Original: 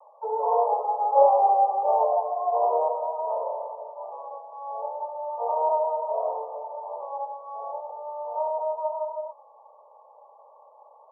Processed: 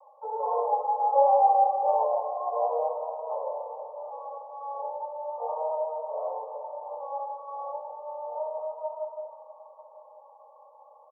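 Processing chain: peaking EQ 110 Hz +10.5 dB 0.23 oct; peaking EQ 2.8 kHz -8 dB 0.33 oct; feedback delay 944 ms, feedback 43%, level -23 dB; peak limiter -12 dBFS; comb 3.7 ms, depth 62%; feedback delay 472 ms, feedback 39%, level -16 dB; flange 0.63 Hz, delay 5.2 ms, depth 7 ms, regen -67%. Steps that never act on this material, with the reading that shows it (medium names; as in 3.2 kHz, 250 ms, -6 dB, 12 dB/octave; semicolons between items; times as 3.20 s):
peaking EQ 110 Hz: input has nothing below 380 Hz; peaking EQ 2.8 kHz: input has nothing above 1.3 kHz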